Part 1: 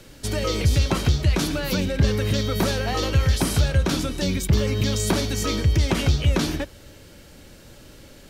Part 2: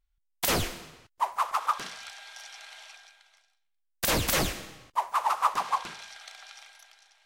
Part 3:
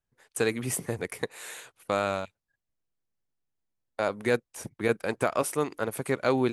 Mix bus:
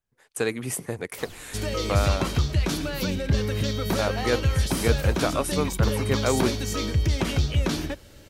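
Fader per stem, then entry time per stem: -3.5, -16.0, +0.5 dB; 1.30, 0.70, 0.00 s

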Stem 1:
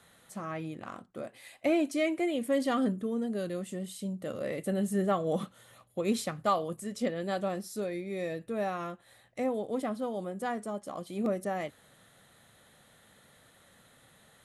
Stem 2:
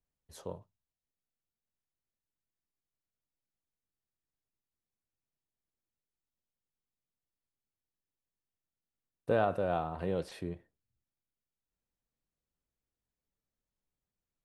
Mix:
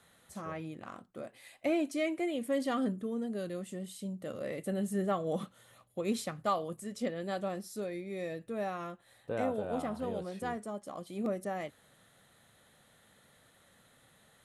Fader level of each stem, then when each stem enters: -3.5, -7.5 dB; 0.00, 0.00 s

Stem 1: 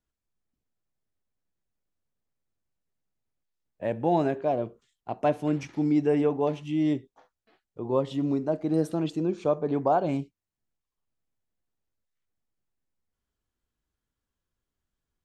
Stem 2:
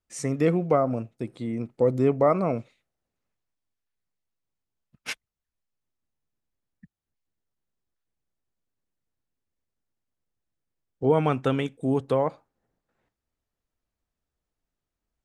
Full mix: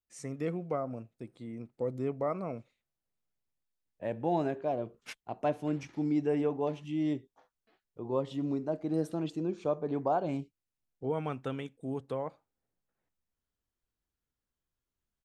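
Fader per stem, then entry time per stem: -6.0, -12.0 dB; 0.20, 0.00 s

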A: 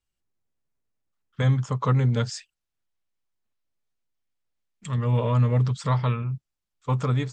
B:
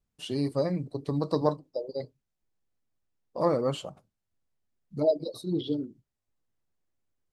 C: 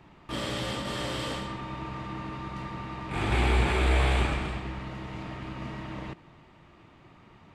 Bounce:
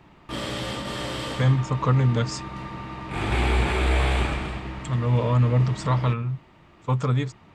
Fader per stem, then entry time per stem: +1.0 dB, off, +2.0 dB; 0.00 s, off, 0.00 s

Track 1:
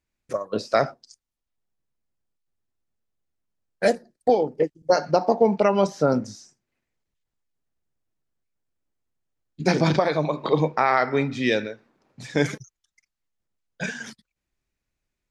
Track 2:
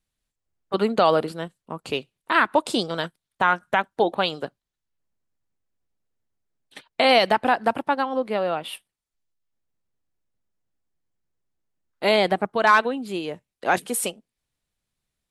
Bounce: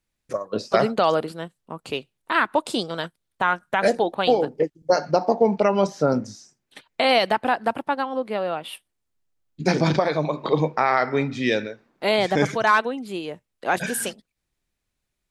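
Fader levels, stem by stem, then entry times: 0.0, -1.5 dB; 0.00, 0.00 s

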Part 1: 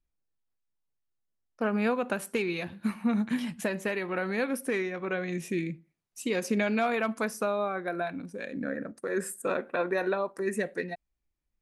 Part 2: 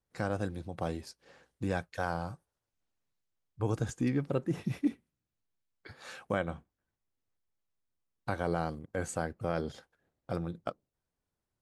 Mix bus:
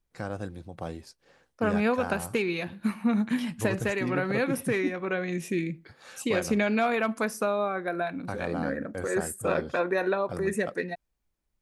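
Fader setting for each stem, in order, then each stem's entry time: +2.0, -1.5 dB; 0.00, 0.00 s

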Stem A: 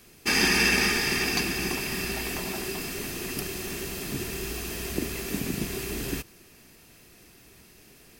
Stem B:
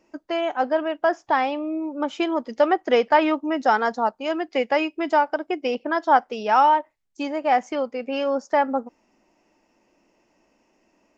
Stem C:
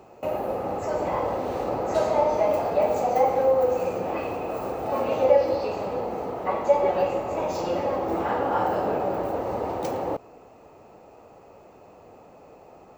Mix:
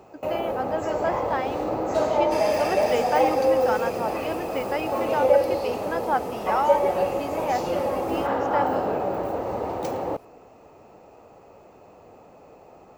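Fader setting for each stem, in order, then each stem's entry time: -13.5, -7.5, 0.0 dB; 2.05, 0.00, 0.00 s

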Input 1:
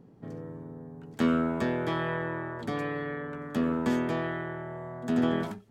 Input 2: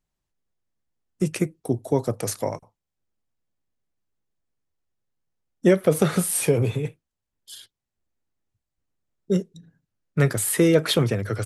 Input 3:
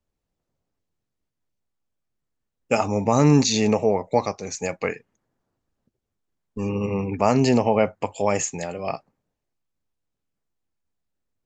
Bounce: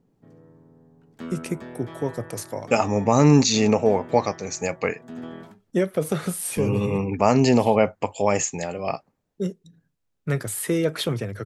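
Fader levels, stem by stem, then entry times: -10.5, -5.0, +1.0 dB; 0.00, 0.10, 0.00 s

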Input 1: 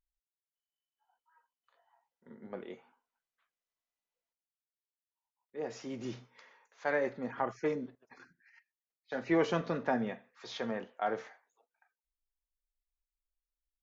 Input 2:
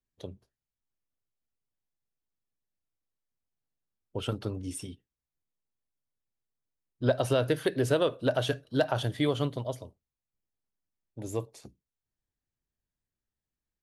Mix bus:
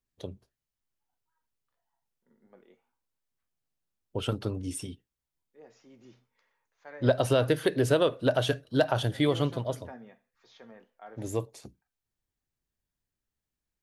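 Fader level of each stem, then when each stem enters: -14.5, +2.0 dB; 0.00, 0.00 s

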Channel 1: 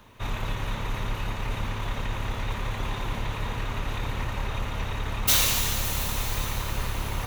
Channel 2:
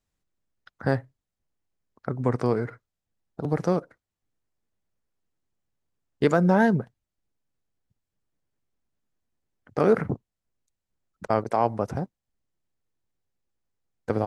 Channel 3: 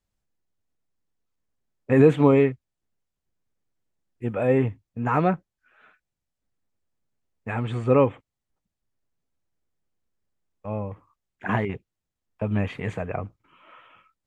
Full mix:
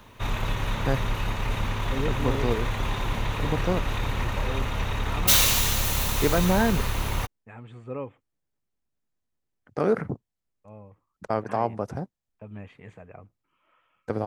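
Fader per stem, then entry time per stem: +2.5, -3.0, -16.0 dB; 0.00, 0.00, 0.00 s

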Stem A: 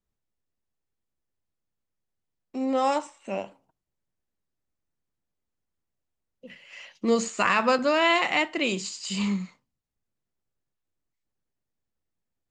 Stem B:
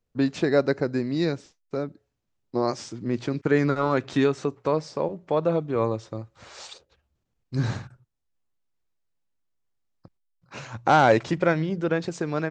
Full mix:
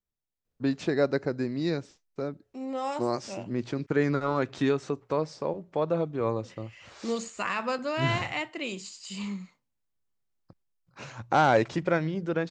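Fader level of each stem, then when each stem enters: -8.0, -4.0 dB; 0.00, 0.45 s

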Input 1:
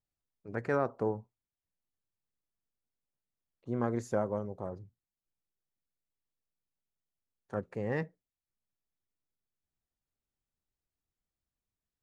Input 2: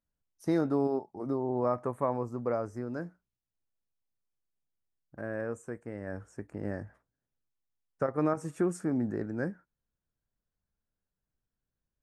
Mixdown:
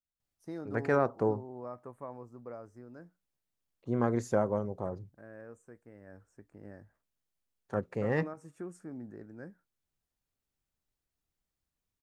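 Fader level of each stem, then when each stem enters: +3.0, -13.5 dB; 0.20, 0.00 s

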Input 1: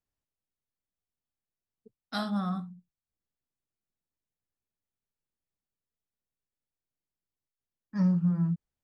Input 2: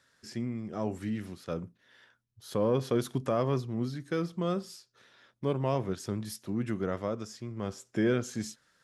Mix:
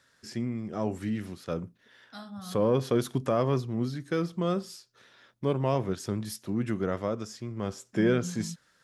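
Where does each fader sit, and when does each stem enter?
-11.5, +2.5 dB; 0.00, 0.00 s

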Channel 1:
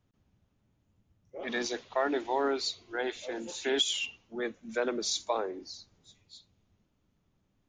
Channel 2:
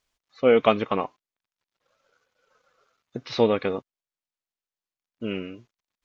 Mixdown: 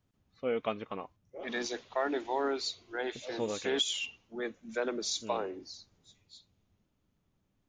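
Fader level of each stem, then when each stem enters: -2.5, -14.5 dB; 0.00, 0.00 s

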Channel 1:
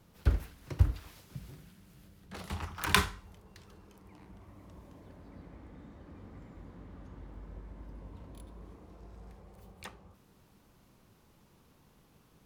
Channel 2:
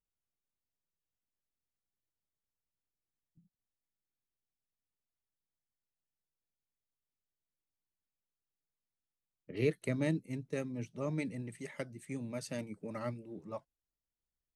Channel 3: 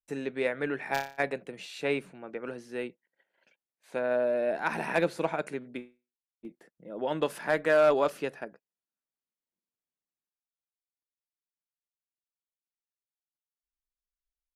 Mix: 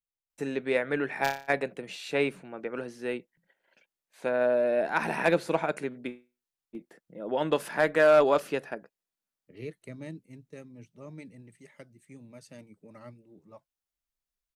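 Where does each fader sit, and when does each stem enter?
off, -8.5 dB, +2.5 dB; off, 0.00 s, 0.30 s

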